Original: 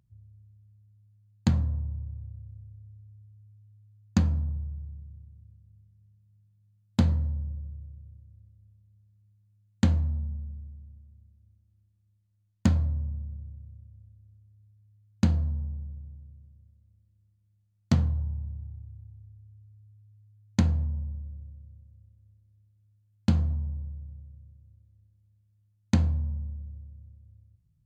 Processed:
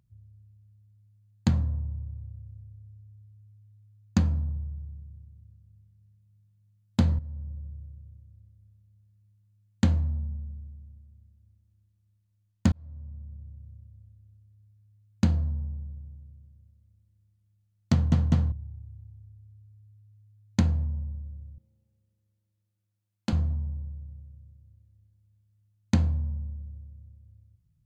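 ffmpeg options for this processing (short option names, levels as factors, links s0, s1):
-filter_complex "[0:a]asettb=1/sr,asplit=3[s0][s1][s2];[s0]atrim=end=21.584[s3];[s1]atrim=start=21.58:end=23.33,asetpts=PTS-STARTPTS,afade=t=in:d=0.004:c=qsin,afade=t=out:st=1.746:d=0.004:c=qsin,highpass=260[s4];[s2]atrim=start=23.326[s5];[s3][s4]acrossfade=d=0.004:c1=hsin:c2=qsin[s6];[s6][s5]acrossfade=d=0.004:c1=qsin:c2=hsin,asplit=6[s7][s8][s9][s10][s11][s12];[s7]atrim=end=7.19,asetpts=PTS-STARTPTS,afade=t=out:st=7.186:d=0.004:c=hsin:silence=0.211349[s13];[s8]atrim=start=7.19:end=12.72,asetpts=PTS-STARTPTS,afade=t=in:d=0.7:c=qsin:silence=0.211349,afade=t=out:st=5.526:d=0.004:c=hsin[s14];[s9]atrim=start=12.72:end=18.122,asetpts=PTS-STARTPTS,afade=t=in:d=1[s15];[s10]atrim=start=17.918:end=18.122[s16];[s11]atrim=start=17.918:end=18.122[s17];[s12]atrim=start=18.518[s18];[s13][s14][s15]concat=n=3:v=0:a=1[s19];[s19][s16]acrossfade=d=0.004:c1=hsin:c2=hsin[s20];[s20][s17]acrossfade=d=0.004:c1=hsin:c2=hsin[s21];[s21][s18]acrossfade=d=0.004:c1=hsin:c2=hsin"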